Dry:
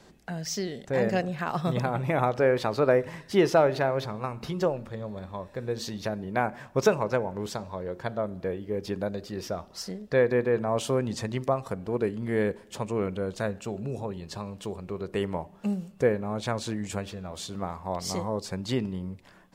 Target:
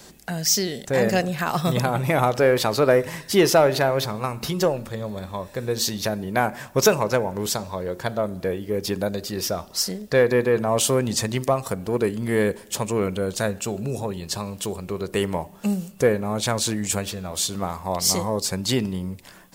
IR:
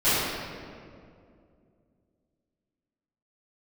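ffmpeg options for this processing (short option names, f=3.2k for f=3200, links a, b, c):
-filter_complex "[0:a]aemphasis=mode=production:type=75kf,asplit=2[a][b];[b]asoftclip=type=tanh:threshold=-21.5dB,volume=-5.5dB[c];[a][c]amix=inputs=2:normalize=0,volume=2dB"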